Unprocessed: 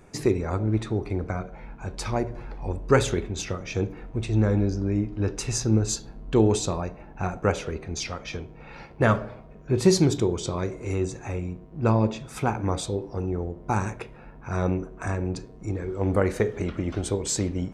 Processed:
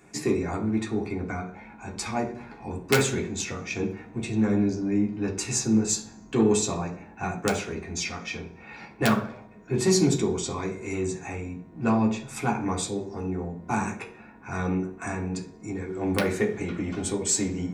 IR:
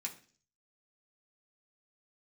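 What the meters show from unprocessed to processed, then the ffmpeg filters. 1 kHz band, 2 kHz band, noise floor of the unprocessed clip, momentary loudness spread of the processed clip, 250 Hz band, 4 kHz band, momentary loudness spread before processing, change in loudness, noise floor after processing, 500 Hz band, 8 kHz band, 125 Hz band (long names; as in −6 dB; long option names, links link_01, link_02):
−0.5 dB, +2.0 dB, −46 dBFS, 13 LU, +1.0 dB, +1.0 dB, 12 LU, −1.0 dB, −48 dBFS, −2.0 dB, +3.5 dB, −5.5 dB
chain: -filter_complex "[0:a]aeval=exprs='0.531*(cos(1*acos(clip(val(0)/0.531,-1,1)))-cos(1*PI/2))+0.0596*(cos(2*acos(clip(val(0)/0.531,-1,1)))-cos(2*PI/2))+0.0376*(cos(5*acos(clip(val(0)/0.531,-1,1)))-cos(5*PI/2))':channel_layout=same,aeval=exprs='(mod(2.37*val(0)+1,2)-1)/2.37':channel_layout=same[link_01];[1:a]atrim=start_sample=2205[link_02];[link_01][link_02]afir=irnorm=-1:irlink=0"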